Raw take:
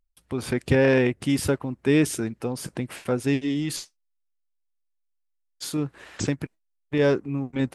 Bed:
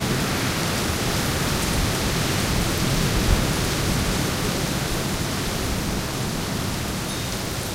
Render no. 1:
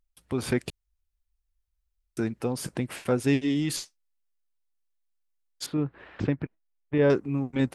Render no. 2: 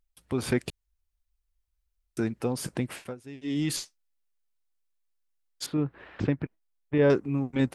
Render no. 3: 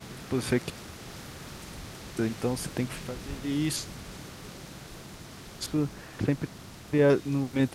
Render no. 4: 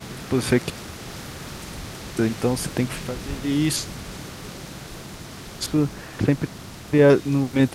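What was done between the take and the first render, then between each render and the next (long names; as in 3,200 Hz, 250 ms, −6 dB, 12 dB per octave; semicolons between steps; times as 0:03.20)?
0:00.70–0:02.17: fill with room tone; 0:05.66–0:07.10: high-frequency loss of the air 400 metres
0:02.89–0:03.63: duck −20 dB, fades 0.26 s
mix in bed −20 dB
level +7 dB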